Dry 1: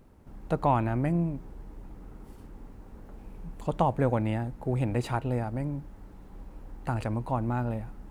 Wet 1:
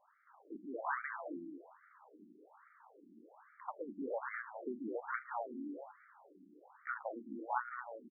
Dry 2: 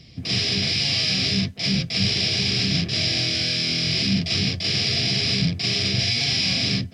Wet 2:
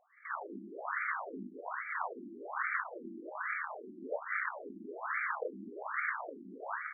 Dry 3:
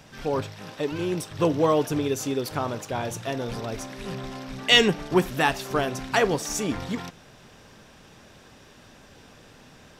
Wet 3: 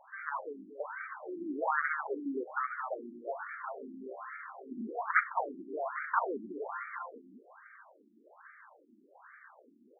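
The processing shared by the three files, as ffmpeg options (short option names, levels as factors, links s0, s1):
-filter_complex "[0:a]aeval=exprs='0.75*(cos(1*acos(clip(val(0)/0.75,-1,1)))-cos(1*PI/2))+0.168*(cos(7*acos(clip(val(0)/0.75,-1,1)))-cos(7*PI/2))':c=same,equalizer=f=1500:t=o:w=1.8:g=8,asoftclip=type=tanh:threshold=0.355,lowshelf=f=400:g=-6,bandreject=f=2500:w=5.4,asplit=2[s0][s1];[s1]adelay=213,lowpass=f=2000:p=1,volume=0.562,asplit=2[s2][s3];[s3]adelay=213,lowpass=f=2000:p=1,volume=0.35,asplit=2[s4][s5];[s5]adelay=213,lowpass=f=2000:p=1,volume=0.35,asplit=2[s6][s7];[s7]adelay=213,lowpass=f=2000:p=1,volume=0.35[s8];[s0][s2][s4][s6][s8]amix=inputs=5:normalize=0,afftfilt=real='re*between(b*sr/1024,250*pow(1700/250,0.5+0.5*sin(2*PI*1.2*pts/sr))/1.41,250*pow(1700/250,0.5+0.5*sin(2*PI*1.2*pts/sr))*1.41)':imag='im*between(b*sr/1024,250*pow(1700/250,0.5+0.5*sin(2*PI*1.2*pts/sr))/1.41,250*pow(1700/250,0.5+0.5*sin(2*PI*1.2*pts/sr))*1.41)':win_size=1024:overlap=0.75,volume=1.19"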